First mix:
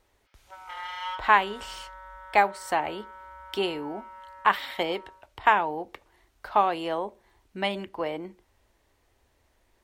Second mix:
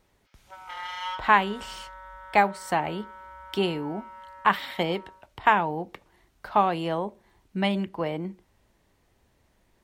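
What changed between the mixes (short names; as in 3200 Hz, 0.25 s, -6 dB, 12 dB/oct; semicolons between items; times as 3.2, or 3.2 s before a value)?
background: remove air absorption 96 m; master: add bell 170 Hz +13 dB 0.84 oct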